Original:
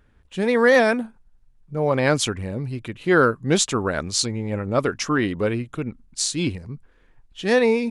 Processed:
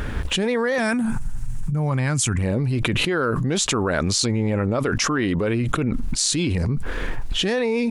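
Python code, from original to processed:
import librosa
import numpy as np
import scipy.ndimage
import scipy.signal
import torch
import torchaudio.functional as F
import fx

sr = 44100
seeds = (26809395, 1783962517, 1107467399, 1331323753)

y = fx.graphic_eq(x, sr, hz=(125, 500, 4000, 8000), db=(9, -11, -6, 10), at=(0.78, 2.39))
y = fx.env_flatten(y, sr, amount_pct=100)
y = F.gain(torch.from_numpy(y), -8.0).numpy()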